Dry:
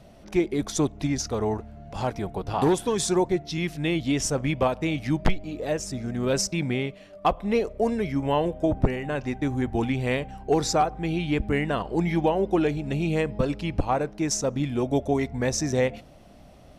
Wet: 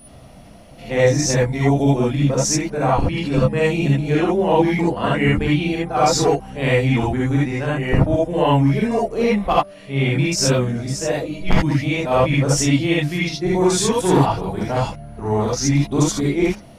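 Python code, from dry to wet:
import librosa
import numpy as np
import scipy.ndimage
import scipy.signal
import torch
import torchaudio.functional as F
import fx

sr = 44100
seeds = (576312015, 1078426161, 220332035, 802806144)

y = np.flip(x).copy()
y = y + 10.0 ** (-48.0 / 20.0) * np.sin(2.0 * np.pi * 9900.0 * np.arange(len(y)) / sr)
y = fx.rev_gated(y, sr, seeds[0], gate_ms=100, shape='rising', drr_db=-6.0)
y = y * 10.0 ** (1.0 / 20.0)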